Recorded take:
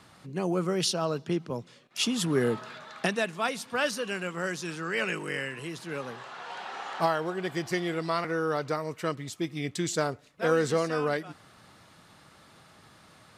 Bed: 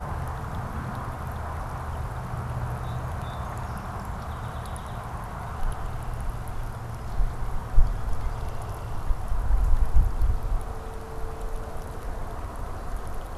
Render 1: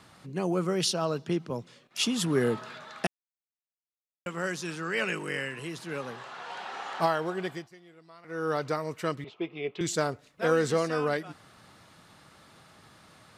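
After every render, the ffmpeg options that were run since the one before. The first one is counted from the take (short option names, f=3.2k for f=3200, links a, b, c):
-filter_complex "[0:a]asettb=1/sr,asplit=3[a][b][c];[a]atrim=end=9.244[d];[b]atrim=start=9.24:end=9.81,asetpts=PTS-STARTPTS,afade=t=in:d=0.004:c=qsin,afade=t=out:st=0.566:d=0.004:c=qsin,highpass=260,equalizer=f=280:t=q:w=4:g=-9,equalizer=f=420:t=q:w=4:g=9,equalizer=f=670:t=q:w=4:g=3,equalizer=f=960:t=q:w=4:g=4,equalizer=f=1.8k:t=q:w=4:g=-10,equalizer=f=2.7k:t=q:w=4:g=6,lowpass=f=3k:w=0.5412,lowpass=f=3k:w=1.3066[e];[c]atrim=start=9.806[f];[d][e]acrossfade=d=0.004:c1=hsin:c2=qsin[g];[g][f]acrossfade=d=0.004:c1=qsin:c2=hsin,asplit=5[h][i][j][k][l];[h]atrim=end=3.07,asetpts=PTS-STARTPTS,afade=t=out:st=3.066:d=0.004:c=hsin[m];[i]atrim=start=3.07:end=4.26,asetpts=PTS-STARTPTS,volume=0[n];[j]atrim=start=4.26:end=7.69,asetpts=PTS-STARTPTS,afade=t=in:d=0.004:c=hsin,afade=t=out:st=3.16:d=0.27:silence=0.0668344[o];[k]atrim=start=7.69:end=8.23,asetpts=PTS-STARTPTS,volume=-23.5dB[p];[l]atrim=start=8.23,asetpts=PTS-STARTPTS,afade=t=in:d=0.27:silence=0.0668344[q];[m][n][o][p][q]concat=n=5:v=0:a=1"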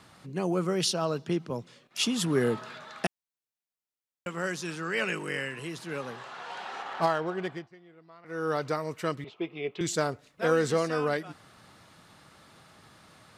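-filter_complex "[0:a]asettb=1/sr,asplit=3[a][b][c];[a]atrim=end=6.824[d];[b]atrim=start=6.82:end=8.26,asetpts=PTS-STARTPTS,afade=t=in:d=0.004:c=qsin,afade=t=out:st=1.436:d=0.004:c=qsin,adynamicsmooth=sensitivity=8:basefreq=3.2k[e];[c]atrim=start=8.256[f];[d][e]acrossfade=d=0.004:c1=hsin:c2=qsin[g];[g][f]acrossfade=d=0.004:c1=qsin:c2=hsin"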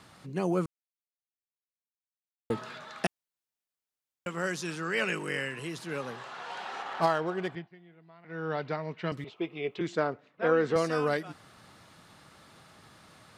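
-filter_complex "[0:a]asettb=1/sr,asplit=3[a][b][c];[a]atrim=end=7.554[d];[b]atrim=start=7.55:end=9.12,asetpts=PTS-STARTPTS,afade=t=in:d=0.004:c=qsin,afade=t=out:st=1.566:d=0.004:c=qsin,highpass=170,equalizer=f=170:t=q:w=4:g=7,equalizer=f=310:t=q:w=4:g=-4,equalizer=f=510:t=q:w=4:g=-6,equalizer=f=1.2k:t=q:w=4:g=-8,lowpass=f=3.8k:w=0.5412,lowpass=f=3.8k:w=1.3066[e];[c]atrim=start=9.116[f];[d][e]acrossfade=d=0.004:c1=hsin:c2=qsin[g];[g][f]acrossfade=d=0.004:c1=qsin:c2=hsin,asettb=1/sr,asplit=3[h][i][j];[h]atrim=end=9.794[k];[i]atrim=start=9.79:end=10.76,asetpts=PTS-STARTPTS,afade=t=in:d=0.004:c=qsin,afade=t=out:st=0.966:d=0.004:c=qsin,highpass=180,lowpass=2.4k[l];[j]atrim=start=10.756[m];[k][l]acrossfade=d=0.004:c1=hsin:c2=qsin[n];[n][m]acrossfade=d=0.004:c1=qsin:c2=hsin,asplit=3[o][p][q];[o]atrim=end=0.66,asetpts=PTS-STARTPTS,afade=t=out:st=0.656:d=0.004:c=hsin[r];[p]atrim=start=0.66:end=2.5,asetpts=PTS-STARTPTS,volume=0[s];[q]atrim=start=2.5,asetpts=PTS-STARTPTS,afade=t=in:d=0.004:c=hsin[t];[r][s][t]concat=n=3:v=0:a=1"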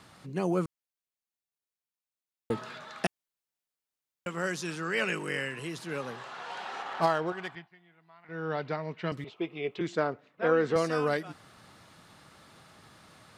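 -filter_complex "[0:a]asettb=1/sr,asplit=3[a][b][c];[a]atrim=end=7.324[d];[b]atrim=start=7.32:end=8.29,asetpts=PTS-STARTPTS,afade=t=in:d=0.004:c=qsin,afade=t=out:st=0.966:d=0.004:c=qsin,lowshelf=f=670:t=q:w=1.5:g=-7.5[e];[c]atrim=start=8.286[f];[d][e]acrossfade=d=0.004:c1=hsin:c2=qsin[g];[g][f]acrossfade=d=0.004:c1=qsin:c2=hsin"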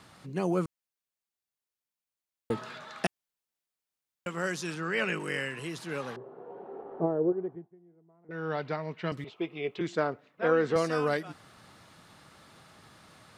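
-filter_complex "[0:a]asettb=1/sr,asplit=3[a][b][c];[a]atrim=end=4.744[d];[b]atrim=start=4.74:end=5.2,asetpts=PTS-STARTPTS,afade=t=in:d=0.004:c=qsin,afade=t=out:st=0.456:d=0.004:c=qsin,bass=f=250:g=2,treble=f=4k:g=-6[e];[c]atrim=start=5.196[f];[d][e]acrossfade=d=0.004:c1=hsin:c2=qsin[g];[g][f]acrossfade=d=0.004:c1=qsin:c2=hsin,asettb=1/sr,asplit=3[h][i][j];[h]atrim=end=6.164[k];[i]atrim=start=6.16:end=8.31,asetpts=PTS-STARTPTS,afade=t=in:d=0.004:c=qsin,afade=t=out:st=2.146:d=0.004:c=qsin,lowpass=f=410:t=q:w=3.5[l];[j]atrim=start=8.306[m];[k][l]acrossfade=d=0.004:c1=hsin:c2=qsin[n];[n][m]acrossfade=d=0.004:c1=qsin:c2=hsin"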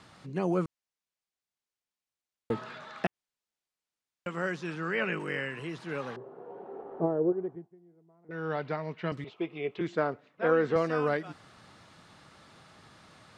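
-filter_complex "[0:a]acrossover=split=3000[a][b];[b]acompressor=threshold=-55dB:ratio=4:attack=1:release=60[c];[a][c]amix=inputs=2:normalize=0,lowpass=8k"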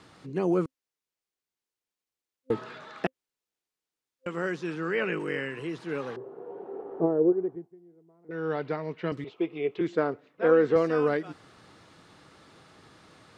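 -af "superequalizer=6b=1.78:7b=1.78"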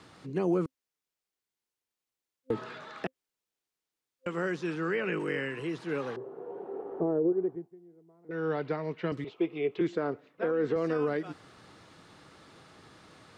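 -filter_complex "[0:a]alimiter=limit=-18.5dB:level=0:latency=1:release=64,acrossover=split=370[a][b];[b]acompressor=threshold=-29dB:ratio=6[c];[a][c]amix=inputs=2:normalize=0"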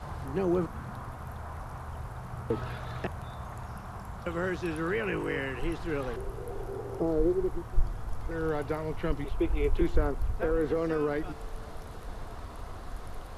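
-filter_complex "[1:a]volume=-7.5dB[a];[0:a][a]amix=inputs=2:normalize=0"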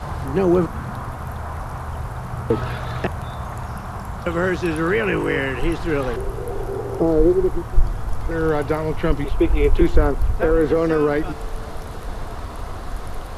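-af "volume=11dB,alimiter=limit=-2dB:level=0:latency=1"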